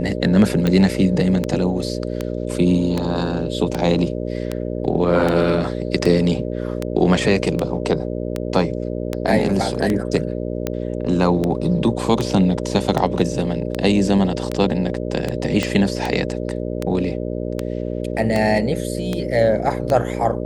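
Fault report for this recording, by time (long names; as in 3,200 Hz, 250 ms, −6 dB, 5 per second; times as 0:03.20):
mains buzz 60 Hz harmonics 10 −25 dBFS
scratch tick 78 rpm −8 dBFS
0:15.63: click −7 dBFS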